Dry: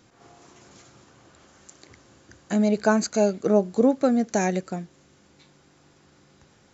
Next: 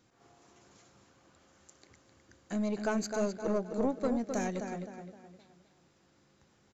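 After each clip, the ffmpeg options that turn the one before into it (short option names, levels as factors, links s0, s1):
-filter_complex "[0:a]asplit=2[s0][s1];[s1]adelay=259,lowpass=f=4200:p=1,volume=0.447,asplit=2[s2][s3];[s3]adelay=259,lowpass=f=4200:p=1,volume=0.4,asplit=2[s4][s5];[s5]adelay=259,lowpass=f=4200:p=1,volume=0.4,asplit=2[s6][s7];[s7]adelay=259,lowpass=f=4200:p=1,volume=0.4,asplit=2[s8][s9];[s9]adelay=259,lowpass=f=4200:p=1,volume=0.4[s10];[s0][s2][s4][s6][s8][s10]amix=inputs=6:normalize=0,aeval=exprs='(tanh(3.98*val(0)+0.4)-tanh(0.4))/3.98':c=same,volume=0.355"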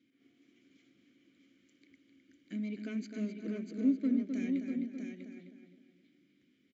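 -filter_complex "[0:a]asplit=3[s0][s1][s2];[s0]bandpass=f=270:t=q:w=8,volume=1[s3];[s1]bandpass=f=2290:t=q:w=8,volume=0.501[s4];[s2]bandpass=f=3010:t=q:w=8,volume=0.355[s5];[s3][s4][s5]amix=inputs=3:normalize=0,aecho=1:1:646:0.501,volume=2.37"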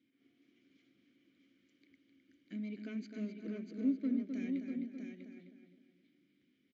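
-af "lowpass=f=5900:w=0.5412,lowpass=f=5900:w=1.3066,volume=0.631"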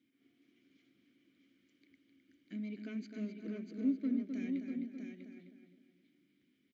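-af "equalizer=f=520:w=5.9:g=-3"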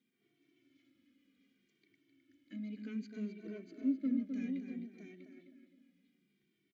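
-filter_complex "[0:a]asplit=2[s0][s1];[s1]adelay=2.1,afreqshift=-0.64[s2];[s0][s2]amix=inputs=2:normalize=1,volume=1.12"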